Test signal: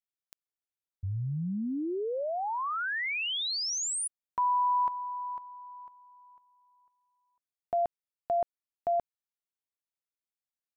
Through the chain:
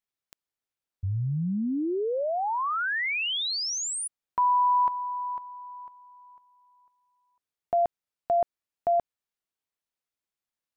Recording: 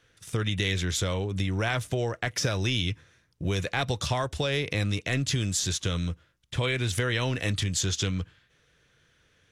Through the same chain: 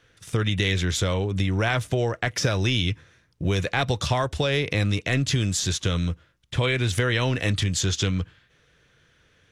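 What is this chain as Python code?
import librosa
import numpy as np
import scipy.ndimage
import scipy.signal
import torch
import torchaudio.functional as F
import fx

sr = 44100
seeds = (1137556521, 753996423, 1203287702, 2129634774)

y = fx.high_shelf(x, sr, hz=5800.0, db=-5.5)
y = y * 10.0 ** (4.5 / 20.0)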